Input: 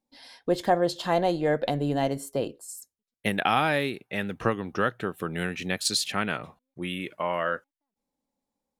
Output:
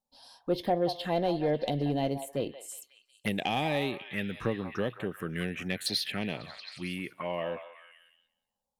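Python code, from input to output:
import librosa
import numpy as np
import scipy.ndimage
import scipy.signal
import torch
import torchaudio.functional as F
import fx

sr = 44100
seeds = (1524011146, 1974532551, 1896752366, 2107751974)

y = fx.env_phaser(x, sr, low_hz=320.0, high_hz=1400.0, full_db=-24.0)
y = fx.echo_stepped(y, sr, ms=181, hz=930.0, octaves=0.7, feedback_pct=70, wet_db=-7)
y = 10.0 ** (-14.5 / 20.0) * np.tanh(y / 10.0 ** (-14.5 / 20.0))
y = y * librosa.db_to_amplitude(-1.5)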